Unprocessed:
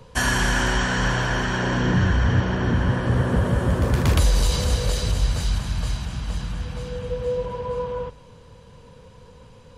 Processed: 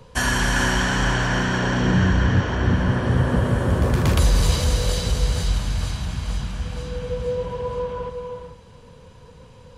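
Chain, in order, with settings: non-linear reverb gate 0.46 s rising, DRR 5.5 dB

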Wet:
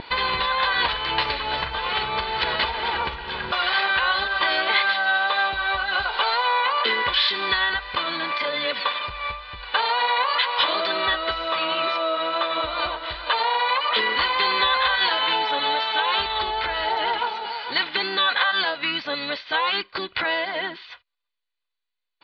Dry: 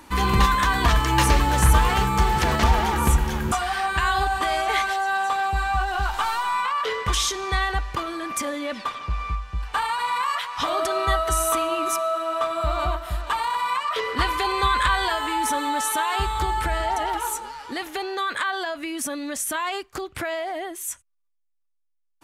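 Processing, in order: comb 2 ms, depth 54%; compressor 4:1, threshold -25 dBFS, peak gain reduction 13.5 dB; tilt +4.5 dB/oct; wow and flutter 23 cents; steep low-pass 4500 Hz 96 dB/oct; harmoniser -12 st -11 dB, -5 st -15 dB, -3 st -17 dB; gain +4 dB

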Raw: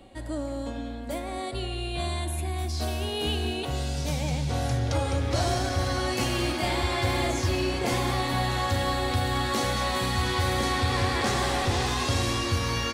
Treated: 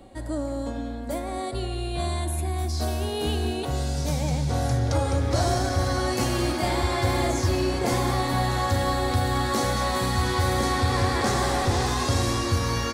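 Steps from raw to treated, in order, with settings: bell 2800 Hz -7.5 dB 0.9 oct; gain +3 dB

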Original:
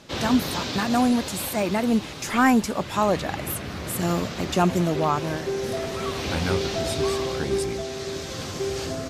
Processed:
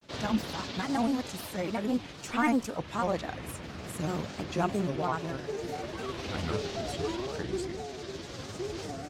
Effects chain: high shelf 9600 Hz -8 dB; grains, spray 16 ms, pitch spread up and down by 3 st; gain -7 dB

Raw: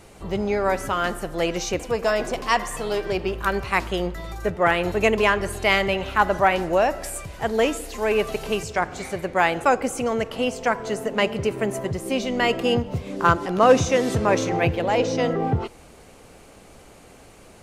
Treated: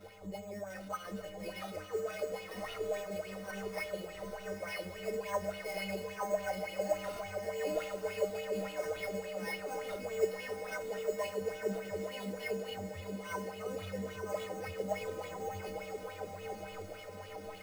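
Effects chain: bell 310 Hz -7 dB 0.26 oct; notch 2300 Hz, Q 21; reverse; compressor 10:1, threshold -36 dBFS, peak gain reduction 25 dB; reverse; chorus 1.8 Hz, delay 20 ms, depth 5.2 ms; metallic resonator 92 Hz, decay 0.65 s, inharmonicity 0.03; small resonant body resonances 540/2100 Hz, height 11 dB, ringing for 25 ms; sample-rate reducer 7300 Hz, jitter 0%; on a send: diffused feedback echo 0.966 s, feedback 64%, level -5 dB; on the sum: LFO bell 3.5 Hz 220–3100 Hz +12 dB; gain +7 dB

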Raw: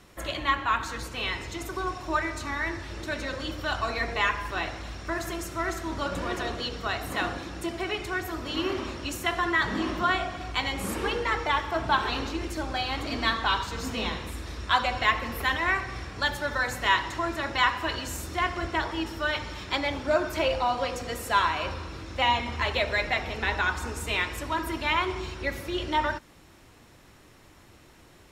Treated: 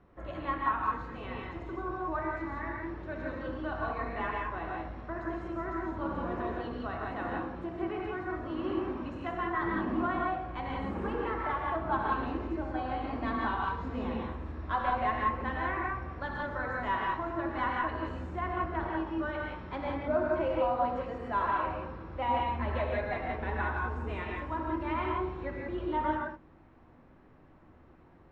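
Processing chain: tracing distortion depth 0.021 ms; LPF 1200 Hz 12 dB/oct; non-linear reverb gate 0.2 s rising, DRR -1.5 dB; gain -6 dB

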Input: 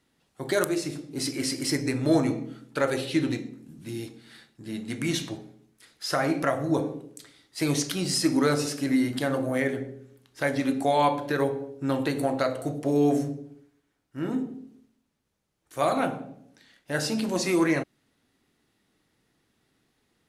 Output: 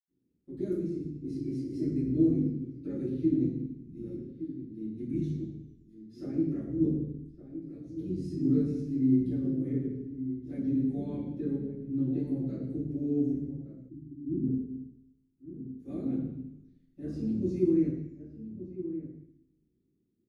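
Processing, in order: octaver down 1 oct, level -4 dB; 7.07–8.28 auto swell 0.488 s; EQ curve 400 Hz 0 dB, 910 Hz -28 dB, 9900 Hz -21 dB; outdoor echo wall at 200 m, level -11 dB; reverb RT60 0.70 s, pre-delay 77 ms; 13.89–14.46 spectral delete 400–7600 Hz; gain -2.5 dB

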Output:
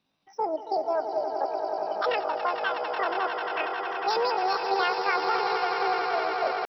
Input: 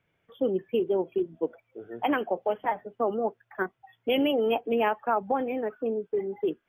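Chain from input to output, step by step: swelling echo 91 ms, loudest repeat 8, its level -10 dB; pitch shift +9 st; gain -2 dB

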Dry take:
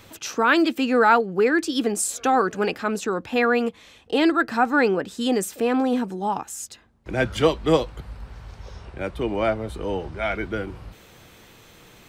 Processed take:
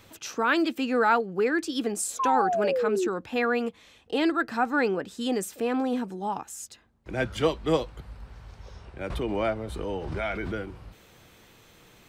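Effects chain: 2.19–3.08 painted sound fall 340–1100 Hz -20 dBFS; 9.1–10.63 backwards sustainer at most 30 dB/s; gain -5.5 dB

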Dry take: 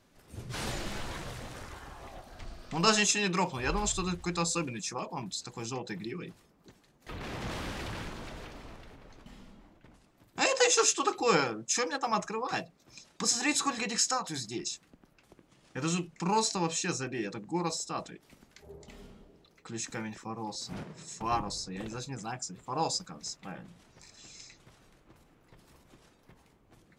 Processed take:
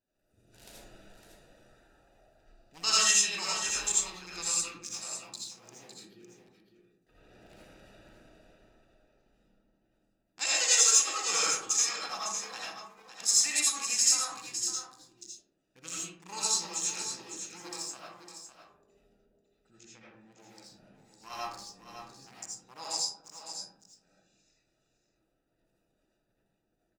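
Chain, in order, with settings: Wiener smoothing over 41 samples; pre-emphasis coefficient 0.97; in parallel at -7.5 dB: soft clip -22 dBFS, distortion -16 dB; 19.75–20.32 on the sum: air absorption 200 m; on a send: echo 0.556 s -9 dB; on the sum: digital reverb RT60 0.73 s, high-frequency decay 0.4×, pre-delay 40 ms, DRR -6.5 dB

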